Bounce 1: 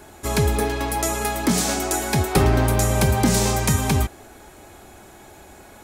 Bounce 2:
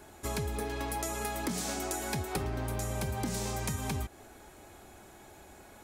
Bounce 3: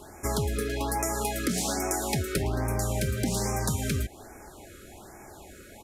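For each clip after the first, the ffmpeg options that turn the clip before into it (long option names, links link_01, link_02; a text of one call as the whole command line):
ffmpeg -i in.wav -af "acompressor=threshold=-23dB:ratio=6,volume=-8dB" out.wav
ffmpeg -i in.wav -filter_complex "[0:a]asplit=2[link_01][link_02];[link_02]acrusher=bits=3:mode=log:mix=0:aa=0.000001,volume=-7dB[link_03];[link_01][link_03]amix=inputs=2:normalize=0,aresample=32000,aresample=44100,afftfilt=real='re*(1-between(b*sr/1024,820*pow(3700/820,0.5+0.5*sin(2*PI*1.2*pts/sr))/1.41,820*pow(3700/820,0.5+0.5*sin(2*PI*1.2*pts/sr))*1.41))':imag='im*(1-between(b*sr/1024,820*pow(3700/820,0.5+0.5*sin(2*PI*1.2*pts/sr))/1.41,820*pow(3700/820,0.5+0.5*sin(2*PI*1.2*pts/sr))*1.41))':win_size=1024:overlap=0.75,volume=3dB" out.wav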